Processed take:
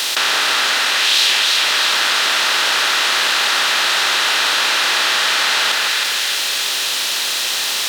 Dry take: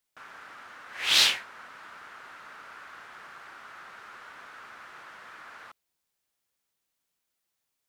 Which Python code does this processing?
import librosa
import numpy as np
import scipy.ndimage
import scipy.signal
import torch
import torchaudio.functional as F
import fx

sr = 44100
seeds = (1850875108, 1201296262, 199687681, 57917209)

p1 = fx.bin_compress(x, sr, power=0.4)
p2 = fx.rider(p1, sr, range_db=10, speed_s=0.5)
p3 = p1 + (p2 * 10.0 ** (0.5 / 20.0))
p4 = scipy.signal.sosfilt(scipy.signal.bessel(2, 350.0, 'highpass', norm='mag', fs=sr, output='sos'), p3)
p5 = fx.notch(p4, sr, hz=2200.0, q=18.0)
p6 = fx.echo_split(p5, sr, split_hz=1700.0, low_ms=158, high_ms=316, feedback_pct=52, wet_db=-6)
y = fx.env_flatten(p6, sr, amount_pct=70)